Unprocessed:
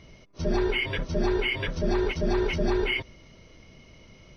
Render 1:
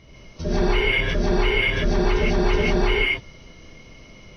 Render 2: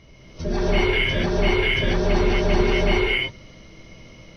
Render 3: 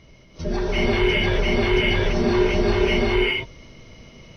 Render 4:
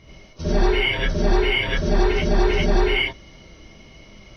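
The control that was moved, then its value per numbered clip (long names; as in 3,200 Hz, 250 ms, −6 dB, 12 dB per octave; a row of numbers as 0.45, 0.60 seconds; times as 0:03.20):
reverb whose tail is shaped and stops, gate: 190, 300, 450, 120 milliseconds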